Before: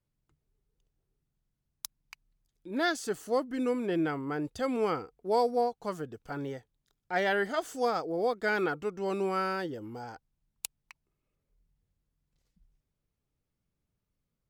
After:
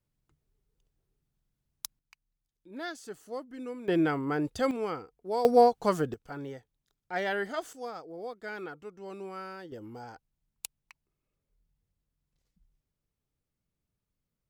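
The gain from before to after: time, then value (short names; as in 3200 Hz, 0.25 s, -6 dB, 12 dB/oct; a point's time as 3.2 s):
+1 dB
from 1.99 s -9.5 dB
from 3.88 s +3.5 dB
from 4.71 s -4 dB
from 5.45 s +8.5 dB
from 6.14 s -3 dB
from 7.73 s -10.5 dB
from 9.72 s -2.5 dB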